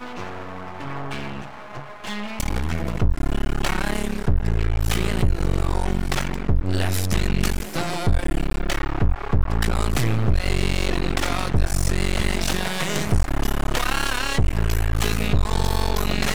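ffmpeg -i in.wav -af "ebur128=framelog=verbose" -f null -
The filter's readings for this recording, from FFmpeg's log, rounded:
Integrated loudness:
  I:         -24.4 LUFS
  Threshold: -34.6 LUFS
Loudness range:
  LRA:         3.9 LU
  Threshold: -44.4 LUFS
  LRA low:   -27.4 LUFS
  LRA high:  -23.5 LUFS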